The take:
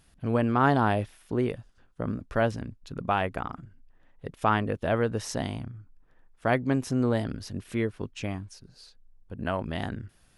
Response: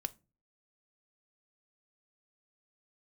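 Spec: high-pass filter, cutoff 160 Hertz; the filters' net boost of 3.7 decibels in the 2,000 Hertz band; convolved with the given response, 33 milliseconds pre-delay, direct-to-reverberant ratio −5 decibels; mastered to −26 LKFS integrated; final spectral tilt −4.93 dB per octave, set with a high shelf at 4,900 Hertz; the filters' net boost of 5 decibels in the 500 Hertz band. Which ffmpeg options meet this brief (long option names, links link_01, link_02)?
-filter_complex "[0:a]highpass=160,equalizer=frequency=500:width_type=o:gain=6,equalizer=frequency=2000:width_type=o:gain=5,highshelf=frequency=4900:gain=-3.5,asplit=2[link_01][link_02];[1:a]atrim=start_sample=2205,adelay=33[link_03];[link_02][link_03]afir=irnorm=-1:irlink=0,volume=6dB[link_04];[link_01][link_04]amix=inputs=2:normalize=0,volume=-6dB"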